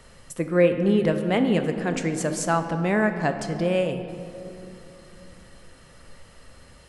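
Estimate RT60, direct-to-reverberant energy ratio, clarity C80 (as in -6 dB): 2.9 s, 7.0 dB, 9.5 dB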